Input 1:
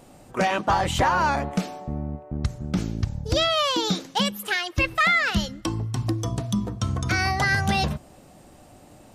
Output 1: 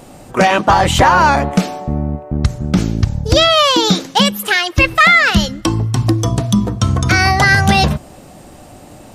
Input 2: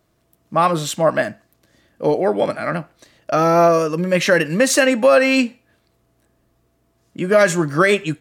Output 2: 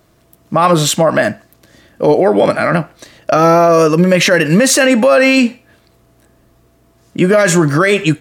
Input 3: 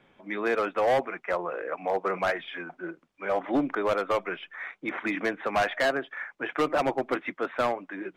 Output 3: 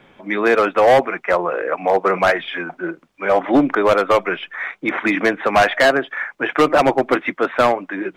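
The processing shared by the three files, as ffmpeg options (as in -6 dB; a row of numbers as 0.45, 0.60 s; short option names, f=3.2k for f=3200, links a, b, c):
-af "alimiter=level_in=12.5dB:limit=-1dB:release=50:level=0:latency=1,volume=-1dB"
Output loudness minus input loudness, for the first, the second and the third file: +11.0, +5.5, +11.5 LU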